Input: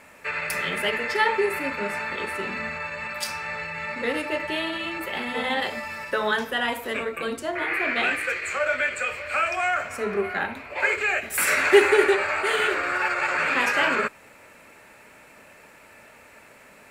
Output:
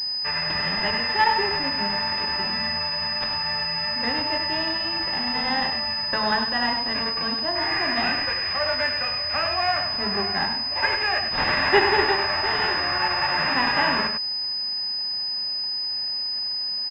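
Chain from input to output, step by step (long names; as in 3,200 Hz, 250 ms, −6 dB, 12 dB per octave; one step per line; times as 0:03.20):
spectral envelope flattened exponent 0.6
mains-hum notches 50/100 Hz
comb filter 1.1 ms, depth 56%
on a send: single-tap delay 99 ms −7.5 dB
on the sum: switching amplifier with a slow clock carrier 5,000 Hz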